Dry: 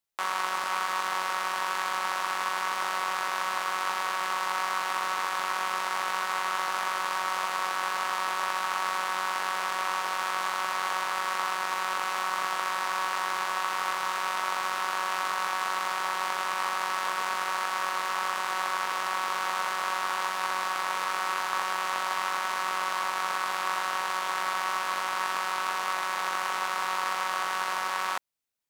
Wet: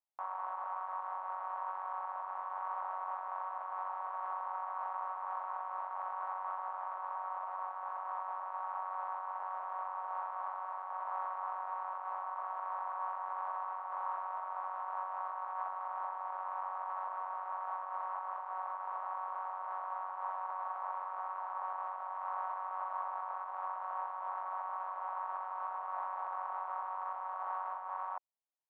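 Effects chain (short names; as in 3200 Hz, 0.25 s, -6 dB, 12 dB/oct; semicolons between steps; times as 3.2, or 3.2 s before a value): Butterworth band-pass 820 Hz, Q 1.7; limiter -25.5 dBFS, peak gain reduction 6 dB; air absorption 110 m; noise-modulated level, depth 60%; gain -1 dB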